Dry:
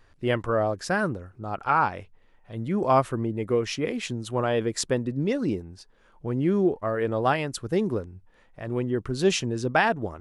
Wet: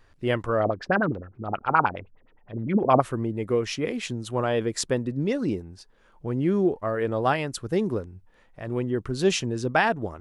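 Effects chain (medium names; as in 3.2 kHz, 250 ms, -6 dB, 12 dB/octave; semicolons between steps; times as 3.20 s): 0.60–3.01 s: LFO low-pass sine 9.6 Hz 230–3600 Hz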